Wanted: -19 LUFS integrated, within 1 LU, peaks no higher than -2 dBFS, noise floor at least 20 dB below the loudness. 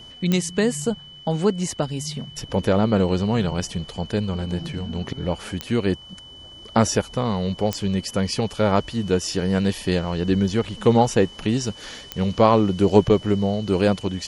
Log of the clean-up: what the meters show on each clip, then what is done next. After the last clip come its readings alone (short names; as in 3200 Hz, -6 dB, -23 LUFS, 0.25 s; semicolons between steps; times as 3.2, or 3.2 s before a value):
clicks 4; steady tone 3000 Hz; tone level -41 dBFS; loudness -22.5 LUFS; peak -1.5 dBFS; loudness target -19.0 LUFS
-> de-click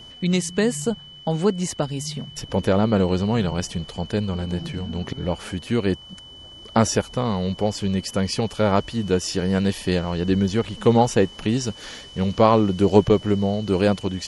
clicks 0; steady tone 3000 Hz; tone level -41 dBFS
-> notch 3000 Hz, Q 30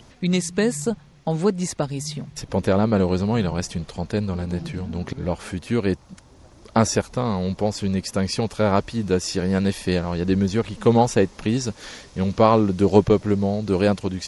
steady tone none; loudness -22.5 LUFS; peak -1.5 dBFS; loudness target -19.0 LUFS
-> gain +3.5 dB; limiter -2 dBFS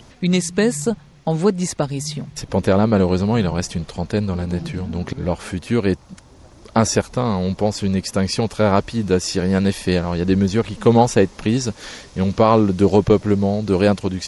loudness -19.0 LUFS; peak -2.0 dBFS; noise floor -46 dBFS